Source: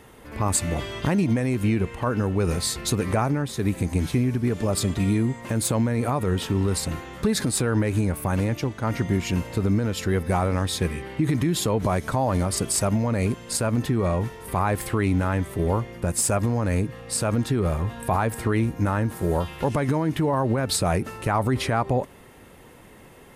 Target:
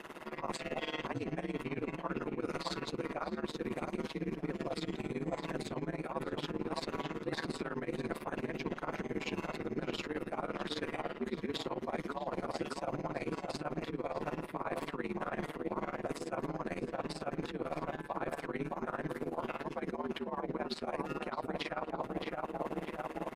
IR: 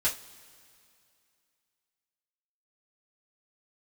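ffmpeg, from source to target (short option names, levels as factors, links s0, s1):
-filter_complex "[0:a]alimiter=limit=0.119:level=0:latency=1:release=41,lowshelf=f=86:g=-9,acrossover=split=5100[s0][s1];[s1]acompressor=threshold=0.00794:ratio=4:attack=1:release=60[s2];[s0][s2]amix=inputs=2:normalize=0,acrossover=split=190 5200:gain=0.178 1 0.224[s3][s4][s5];[s3][s4][s5]amix=inputs=3:normalize=0,aecho=1:1:3:0.69,asplit=2[s6][s7];[s7]adelay=622,lowpass=f=1600:p=1,volume=0.596,asplit=2[s8][s9];[s9]adelay=622,lowpass=f=1600:p=1,volume=0.49,asplit=2[s10][s11];[s11]adelay=622,lowpass=f=1600:p=1,volume=0.49,asplit=2[s12][s13];[s13]adelay=622,lowpass=f=1600:p=1,volume=0.49,asplit=2[s14][s15];[s15]adelay=622,lowpass=f=1600:p=1,volume=0.49,asplit=2[s16][s17];[s17]adelay=622,lowpass=f=1600:p=1,volume=0.49[s18];[s6][s8][s10][s12][s14][s16][s18]amix=inputs=7:normalize=0,asplit=2[s19][s20];[1:a]atrim=start_sample=2205,asetrate=66150,aresample=44100[s21];[s20][s21]afir=irnorm=-1:irlink=0,volume=0.141[s22];[s19][s22]amix=inputs=2:normalize=0,tremolo=f=18:d=0.86,areverse,acompressor=threshold=0.0112:ratio=12,areverse,aeval=exprs='val(0)*sin(2*PI*76*n/s)':c=same,volume=2.51"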